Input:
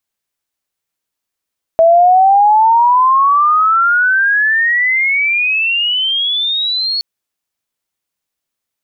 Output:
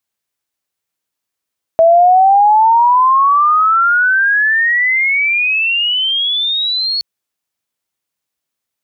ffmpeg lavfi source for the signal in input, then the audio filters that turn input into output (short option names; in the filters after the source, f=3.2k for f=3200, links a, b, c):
-f lavfi -i "aevalsrc='pow(10,(-4.5-9.5*t/5.22)/20)*sin(2*PI*650*5.22/log(4400/650)*(exp(log(4400/650)*t/5.22)-1))':d=5.22:s=44100"
-af "highpass=52"